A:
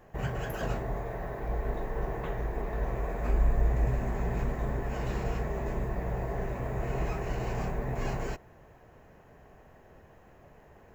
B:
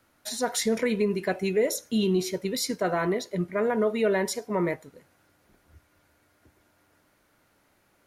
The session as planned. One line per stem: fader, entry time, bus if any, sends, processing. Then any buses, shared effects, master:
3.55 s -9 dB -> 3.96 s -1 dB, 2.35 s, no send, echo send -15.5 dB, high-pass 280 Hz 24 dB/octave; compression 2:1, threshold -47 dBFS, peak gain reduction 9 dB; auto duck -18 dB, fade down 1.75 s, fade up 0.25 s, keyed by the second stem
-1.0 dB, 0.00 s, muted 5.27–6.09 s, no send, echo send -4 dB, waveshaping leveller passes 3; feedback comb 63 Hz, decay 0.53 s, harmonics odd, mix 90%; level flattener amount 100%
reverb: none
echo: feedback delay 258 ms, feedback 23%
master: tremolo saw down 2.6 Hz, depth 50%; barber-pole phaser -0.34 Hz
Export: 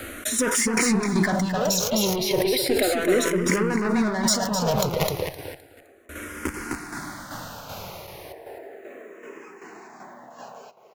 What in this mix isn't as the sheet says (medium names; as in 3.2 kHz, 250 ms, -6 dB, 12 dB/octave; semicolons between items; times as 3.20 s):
stem A -9.0 dB -> -0.5 dB; stem B: missing feedback comb 63 Hz, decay 0.53 s, harmonics odd, mix 90%